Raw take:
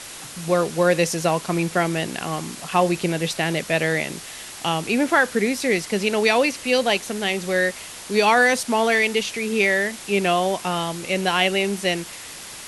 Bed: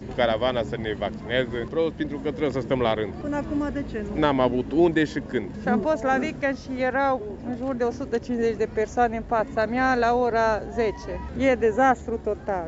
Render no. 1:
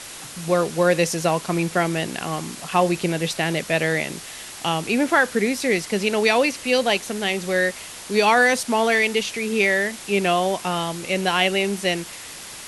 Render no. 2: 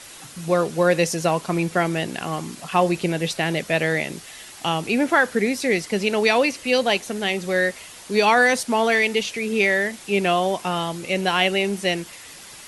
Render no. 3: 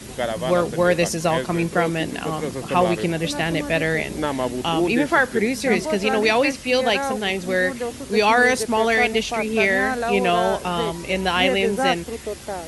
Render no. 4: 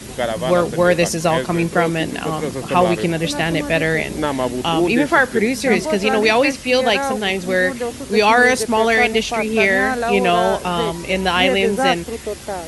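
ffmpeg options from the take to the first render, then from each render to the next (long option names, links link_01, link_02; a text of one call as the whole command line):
ffmpeg -i in.wav -af anull out.wav
ffmpeg -i in.wav -af "afftdn=noise_reduction=6:noise_floor=-38" out.wav
ffmpeg -i in.wav -i bed.wav -filter_complex "[1:a]volume=-3dB[link_01];[0:a][link_01]amix=inputs=2:normalize=0" out.wav
ffmpeg -i in.wav -af "volume=3.5dB,alimiter=limit=-1dB:level=0:latency=1" out.wav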